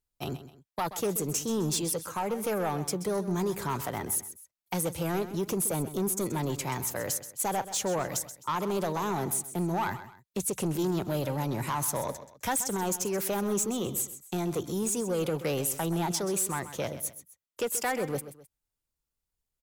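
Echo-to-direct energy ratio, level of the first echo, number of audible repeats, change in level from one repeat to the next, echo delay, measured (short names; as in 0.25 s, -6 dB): -12.5 dB, -13.0 dB, 2, -9.0 dB, 0.13 s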